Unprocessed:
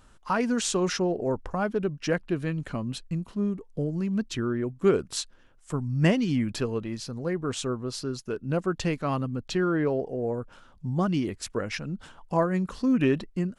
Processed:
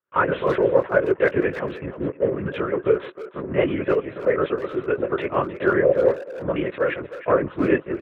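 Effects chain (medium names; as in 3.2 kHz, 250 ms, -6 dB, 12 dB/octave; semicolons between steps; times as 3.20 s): expander -43 dBFS; tilt EQ +3 dB/octave; hum notches 60/120/180/240/300/360/420 Hz; waveshaping leveller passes 3; in parallel at -2.5 dB: peak limiter -20 dBFS, peak gain reduction 13.5 dB; on the sum: granular stretch 0.59×, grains 196 ms; LPC vocoder at 8 kHz whisper; cabinet simulation 150–2100 Hz, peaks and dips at 230 Hz -6 dB, 380 Hz +6 dB, 550 Hz +9 dB, 800 Hz -7 dB; speakerphone echo 310 ms, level -12 dB; trim -2.5 dB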